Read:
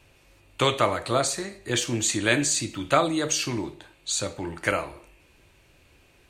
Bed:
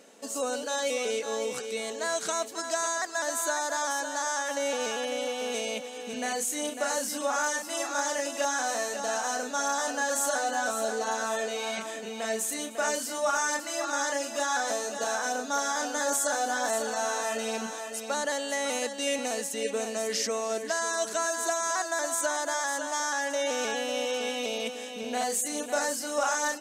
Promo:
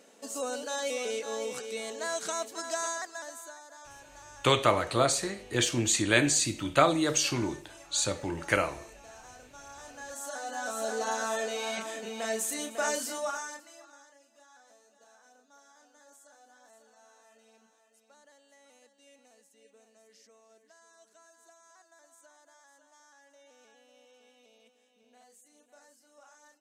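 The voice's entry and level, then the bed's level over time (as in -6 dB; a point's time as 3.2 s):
3.85 s, -1.5 dB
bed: 2.89 s -3.5 dB
3.64 s -20.5 dB
9.65 s -20.5 dB
10.98 s -1.5 dB
13.1 s -1.5 dB
14.12 s -30.5 dB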